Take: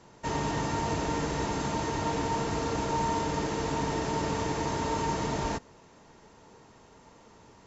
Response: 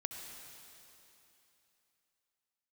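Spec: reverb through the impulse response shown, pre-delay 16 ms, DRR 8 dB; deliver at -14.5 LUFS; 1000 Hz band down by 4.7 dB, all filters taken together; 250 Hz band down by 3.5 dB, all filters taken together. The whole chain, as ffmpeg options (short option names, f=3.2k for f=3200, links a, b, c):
-filter_complex "[0:a]equalizer=f=250:t=o:g=-4.5,equalizer=f=1k:t=o:g=-5,asplit=2[a][b];[1:a]atrim=start_sample=2205,adelay=16[c];[b][c]afir=irnorm=-1:irlink=0,volume=-7.5dB[d];[a][d]amix=inputs=2:normalize=0,volume=18dB"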